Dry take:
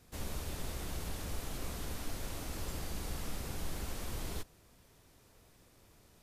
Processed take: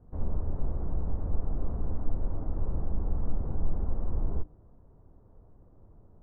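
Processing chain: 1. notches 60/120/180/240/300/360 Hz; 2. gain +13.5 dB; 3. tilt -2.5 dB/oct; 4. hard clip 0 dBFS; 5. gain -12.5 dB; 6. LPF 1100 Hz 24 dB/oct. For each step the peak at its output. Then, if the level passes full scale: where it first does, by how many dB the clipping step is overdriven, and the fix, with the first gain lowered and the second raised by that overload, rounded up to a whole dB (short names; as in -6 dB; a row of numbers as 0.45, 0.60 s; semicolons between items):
-26.0, -12.5, -2.0, -2.0, -14.5, -14.5 dBFS; no overload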